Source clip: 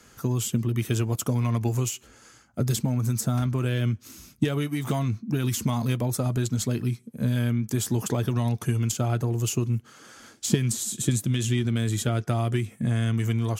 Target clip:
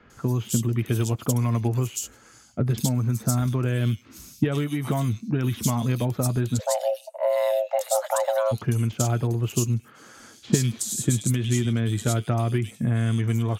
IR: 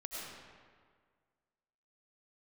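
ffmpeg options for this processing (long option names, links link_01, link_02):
-filter_complex "[0:a]asplit=3[link_01][link_02][link_03];[link_01]afade=type=out:start_time=6.59:duration=0.02[link_04];[link_02]afreqshift=420,afade=type=in:start_time=6.59:duration=0.02,afade=type=out:start_time=8.51:duration=0.02[link_05];[link_03]afade=type=in:start_time=8.51:duration=0.02[link_06];[link_04][link_05][link_06]amix=inputs=3:normalize=0,acrossover=split=3000[link_07][link_08];[link_08]adelay=100[link_09];[link_07][link_09]amix=inputs=2:normalize=0,volume=1.5dB"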